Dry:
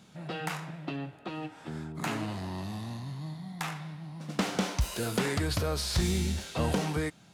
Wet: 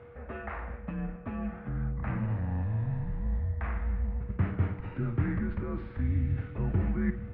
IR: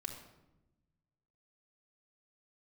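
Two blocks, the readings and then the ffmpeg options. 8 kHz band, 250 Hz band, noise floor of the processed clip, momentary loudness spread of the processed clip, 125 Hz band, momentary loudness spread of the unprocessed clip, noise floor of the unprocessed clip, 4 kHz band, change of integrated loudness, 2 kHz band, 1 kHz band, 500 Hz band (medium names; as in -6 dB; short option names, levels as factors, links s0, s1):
under -40 dB, -0.5 dB, -45 dBFS, 7 LU, +4.0 dB, 11 LU, -55 dBFS, under -25 dB, +0.5 dB, -6.0 dB, -6.5 dB, -6.5 dB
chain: -filter_complex "[0:a]areverse,acompressor=threshold=0.00708:ratio=4,areverse,highpass=f=190:t=q:w=0.5412,highpass=f=190:t=q:w=1.307,lowpass=f=2100:t=q:w=0.5176,lowpass=f=2100:t=q:w=0.7071,lowpass=f=2100:t=q:w=1.932,afreqshift=-100,aemphasis=mode=production:type=75kf,asplit=2[s0][s1];[1:a]atrim=start_sample=2205,adelay=53[s2];[s1][s2]afir=irnorm=-1:irlink=0,volume=0.355[s3];[s0][s3]amix=inputs=2:normalize=0,aeval=exprs='val(0)+0.00178*sin(2*PI*480*n/s)':c=same,asubboost=boost=7.5:cutoff=210,volume=2"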